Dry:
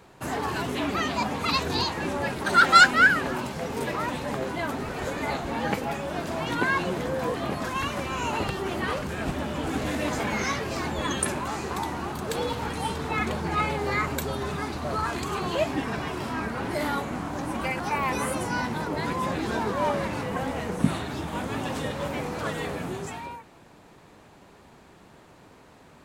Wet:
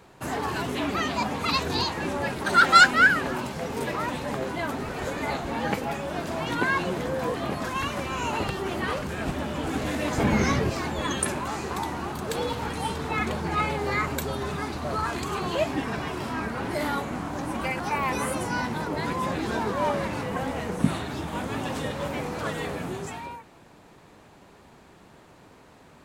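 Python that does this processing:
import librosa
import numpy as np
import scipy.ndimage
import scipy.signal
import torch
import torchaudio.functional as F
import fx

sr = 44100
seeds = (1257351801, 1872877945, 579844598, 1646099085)

y = fx.low_shelf(x, sr, hz=440.0, db=11.0, at=(10.18, 10.7))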